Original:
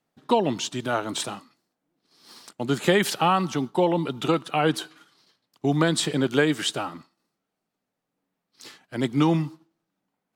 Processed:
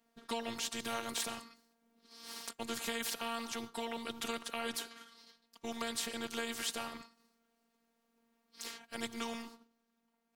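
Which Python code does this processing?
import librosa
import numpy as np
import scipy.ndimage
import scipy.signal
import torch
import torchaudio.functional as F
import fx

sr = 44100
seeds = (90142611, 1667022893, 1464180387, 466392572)

y = fx.rider(x, sr, range_db=10, speed_s=0.5)
y = fx.robotise(y, sr, hz=231.0)
y = fx.spectral_comp(y, sr, ratio=2.0)
y = F.gain(torch.from_numpy(y), -7.0).numpy()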